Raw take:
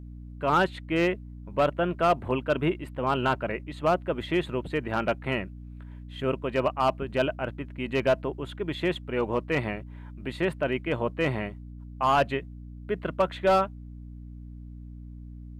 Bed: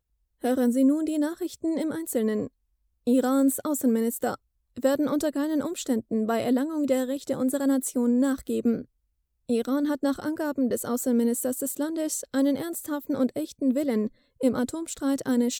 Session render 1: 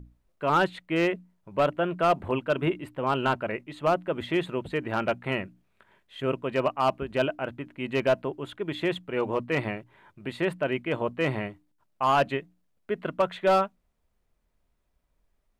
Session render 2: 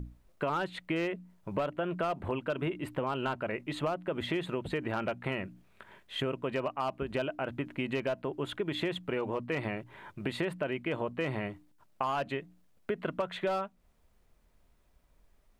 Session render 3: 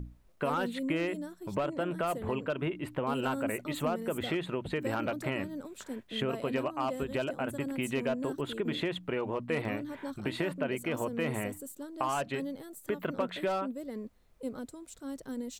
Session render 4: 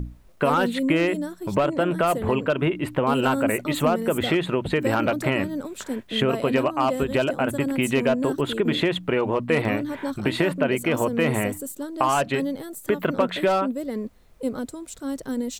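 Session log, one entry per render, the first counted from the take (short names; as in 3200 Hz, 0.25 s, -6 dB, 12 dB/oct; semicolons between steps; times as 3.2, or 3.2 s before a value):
notches 60/120/180/240/300 Hz
in parallel at +1.5 dB: limiter -24 dBFS, peak gain reduction 10 dB; on the sum: compressor 6:1, threshold -30 dBFS, peak gain reduction 14 dB
add bed -14.5 dB
gain +10.5 dB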